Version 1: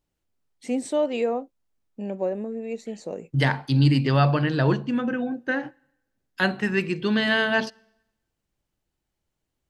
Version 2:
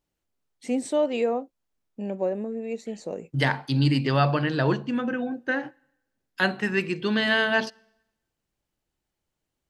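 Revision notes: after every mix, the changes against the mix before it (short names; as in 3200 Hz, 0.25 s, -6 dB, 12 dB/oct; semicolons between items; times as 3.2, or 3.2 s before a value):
second voice: add low shelf 170 Hz -6.5 dB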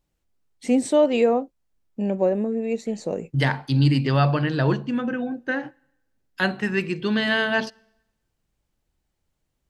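first voice +5.0 dB; master: add low shelf 140 Hz +8 dB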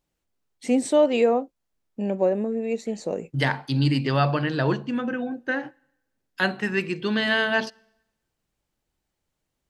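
master: add low shelf 140 Hz -8 dB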